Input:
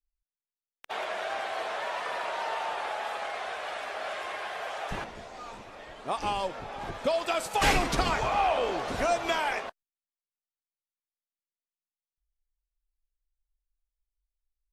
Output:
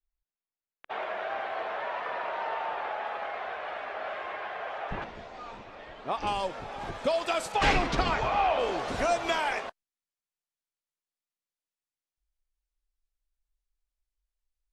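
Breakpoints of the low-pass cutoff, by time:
2.4 kHz
from 5.02 s 4.1 kHz
from 6.27 s 10 kHz
from 7.52 s 4.6 kHz
from 8.59 s 10 kHz

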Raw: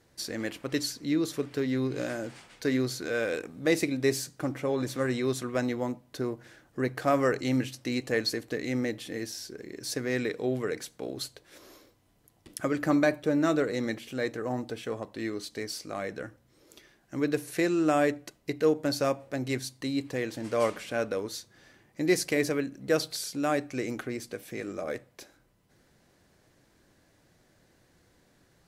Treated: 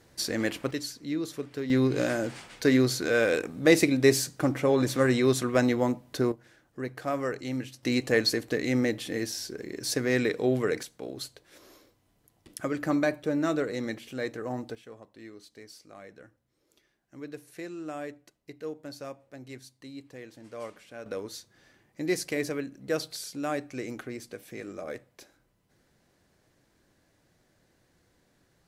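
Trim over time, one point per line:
+5 dB
from 0.71 s -4 dB
from 1.70 s +5.5 dB
from 6.32 s -5.5 dB
from 7.83 s +4 dB
from 10.83 s -2 dB
from 14.75 s -13 dB
from 21.06 s -3.5 dB

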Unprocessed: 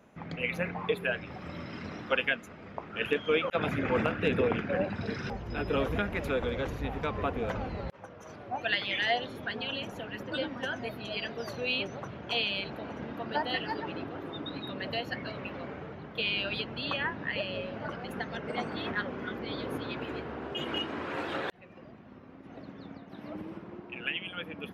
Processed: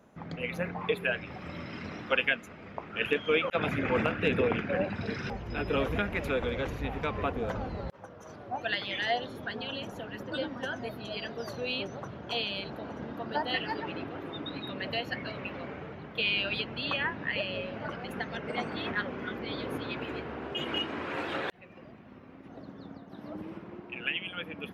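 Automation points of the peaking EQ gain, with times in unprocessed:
peaking EQ 2.4 kHz 0.72 oct
-5 dB
from 0.81 s +3 dB
from 7.32 s -5 dB
from 13.48 s +3 dB
from 22.48 s -7 dB
from 23.42 s +2 dB

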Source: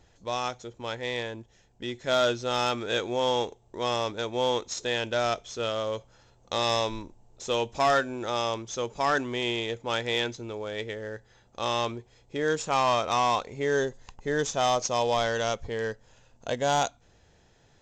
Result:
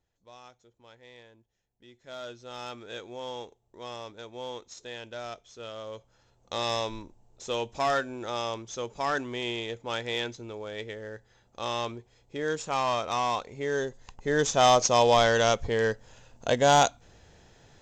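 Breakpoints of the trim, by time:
1.85 s -20 dB
2.71 s -12 dB
5.56 s -12 dB
6.60 s -3.5 dB
13.83 s -3.5 dB
14.65 s +5 dB

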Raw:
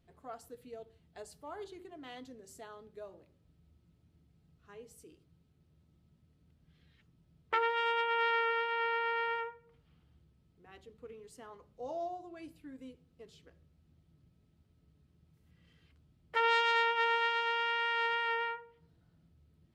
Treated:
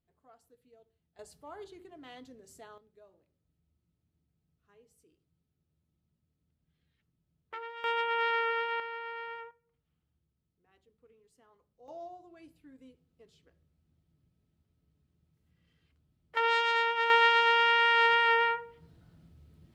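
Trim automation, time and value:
-14 dB
from 1.19 s -1.5 dB
from 2.78 s -11.5 dB
from 7.84 s +1 dB
from 8.80 s -7 dB
from 9.51 s -14 dB
from 11.88 s -6 dB
from 16.37 s +1 dB
from 17.10 s +8.5 dB

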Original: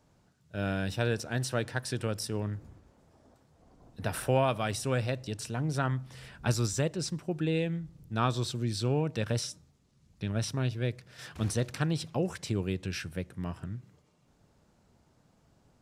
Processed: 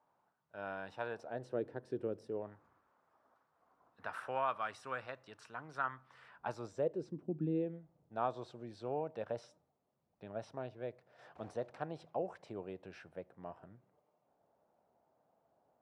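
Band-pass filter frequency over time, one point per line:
band-pass filter, Q 2.4
1.09 s 940 Hz
1.59 s 390 Hz
2.25 s 390 Hz
2.65 s 1.2 kHz
6.25 s 1.2 kHz
7.44 s 220 Hz
7.86 s 690 Hz

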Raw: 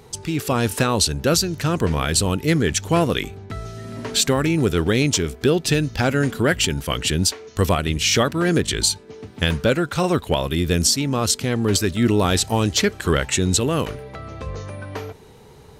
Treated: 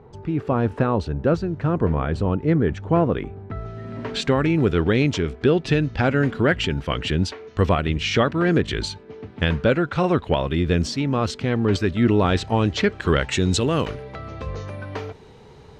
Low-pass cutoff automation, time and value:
3.28 s 1.2 kHz
4.05 s 2.7 kHz
12.76 s 2.7 kHz
13.53 s 5.1 kHz

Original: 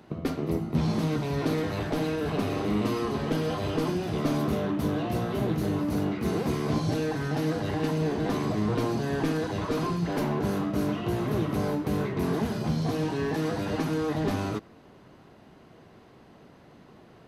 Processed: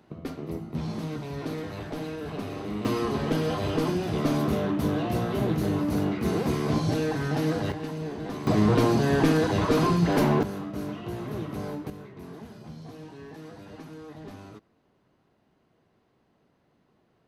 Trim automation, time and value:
-6 dB
from 2.85 s +1.5 dB
from 7.72 s -6.5 dB
from 8.47 s +6 dB
from 10.43 s -6 dB
from 11.90 s -15 dB

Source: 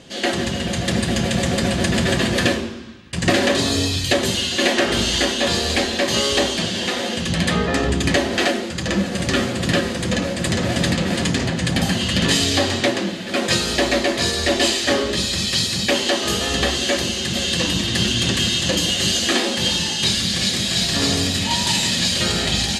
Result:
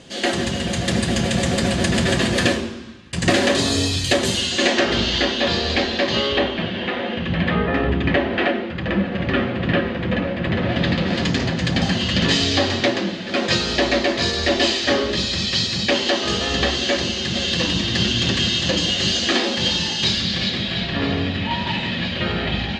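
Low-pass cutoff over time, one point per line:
low-pass 24 dB/octave
4.36 s 11 kHz
5.04 s 4.9 kHz
6.04 s 4.9 kHz
6.52 s 2.9 kHz
10.51 s 2.9 kHz
11.34 s 5.8 kHz
20.04 s 5.8 kHz
20.95 s 3 kHz

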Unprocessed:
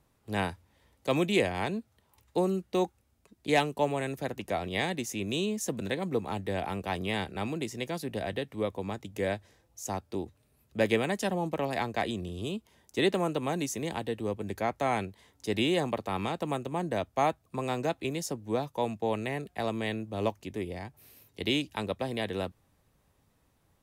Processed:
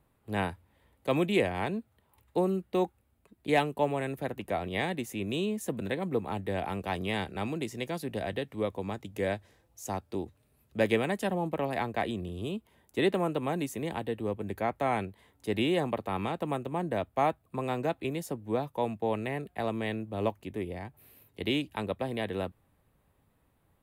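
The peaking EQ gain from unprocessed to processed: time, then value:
peaking EQ 5.8 kHz 0.93 oct
6.29 s -12.5 dB
6.84 s -5 dB
10.79 s -5 dB
11.35 s -13 dB

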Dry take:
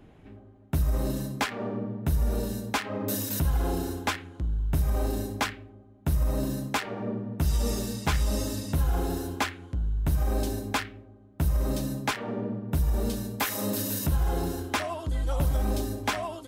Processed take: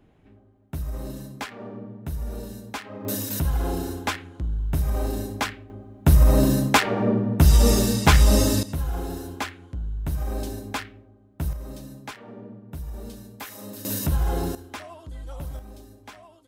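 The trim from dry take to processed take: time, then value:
-5.5 dB
from 3.05 s +1.5 dB
from 5.70 s +10.5 dB
from 8.63 s -2 dB
from 11.53 s -9.5 dB
from 13.85 s +2.5 dB
from 14.55 s -9 dB
from 15.59 s -16 dB

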